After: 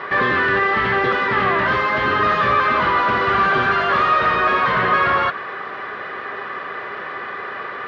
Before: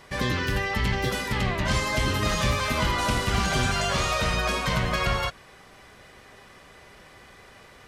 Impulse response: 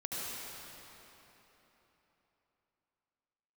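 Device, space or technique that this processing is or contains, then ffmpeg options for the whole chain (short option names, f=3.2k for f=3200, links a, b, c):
overdrive pedal into a guitar cabinet: -filter_complex "[0:a]asplit=2[a][b];[b]highpass=f=720:p=1,volume=28dB,asoftclip=type=tanh:threshold=-12.5dB[c];[a][c]amix=inputs=2:normalize=0,lowpass=f=1.1k:p=1,volume=-6dB,highpass=87,equalizer=f=400:t=q:w=4:g=7,equalizer=f=1.2k:t=q:w=4:g=10,equalizer=f=1.7k:t=q:w=4:g=9,lowpass=f=4.1k:w=0.5412,lowpass=f=4.1k:w=1.3066"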